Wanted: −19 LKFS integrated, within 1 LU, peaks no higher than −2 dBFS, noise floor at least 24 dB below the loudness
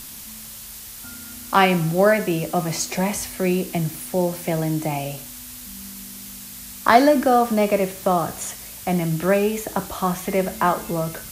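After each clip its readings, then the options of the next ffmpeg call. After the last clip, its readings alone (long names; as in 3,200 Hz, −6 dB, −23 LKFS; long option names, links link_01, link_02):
background noise floor −38 dBFS; target noise floor −45 dBFS; integrated loudness −21.0 LKFS; sample peak −1.5 dBFS; target loudness −19.0 LKFS
→ -af "afftdn=noise_reduction=7:noise_floor=-38"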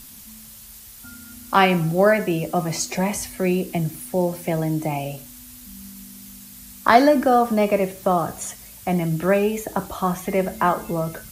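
background noise floor −43 dBFS; target noise floor −46 dBFS
→ -af "afftdn=noise_reduction=6:noise_floor=-43"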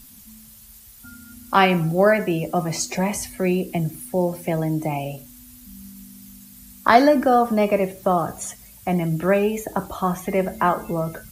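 background noise floor −46 dBFS; integrated loudness −21.0 LKFS; sample peak −1.5 dBFS; target loudness −19.0 LKFS
→ -af "volume=2dB,alimiter=limit=-2dB:level=0:latency=1"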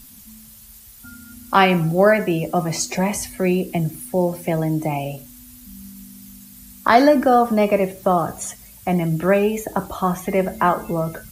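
integrated loudness −19.5 LKFS; sample peak −2.0 dBFS; background noise floor −44 dBFS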